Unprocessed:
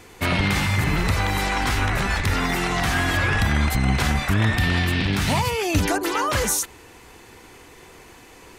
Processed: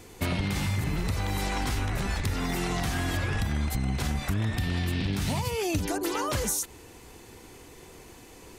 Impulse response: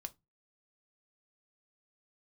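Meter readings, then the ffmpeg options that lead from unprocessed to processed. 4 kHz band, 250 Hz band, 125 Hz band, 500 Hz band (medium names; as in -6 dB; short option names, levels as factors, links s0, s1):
-8.5 dB, -6.0 dB, -6.5 dB, -6.5 dB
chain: -af "equalizer=f=1600:t=o:w=2.4:g=-7.5,acompressor=threshold=0.0562:ratio=6"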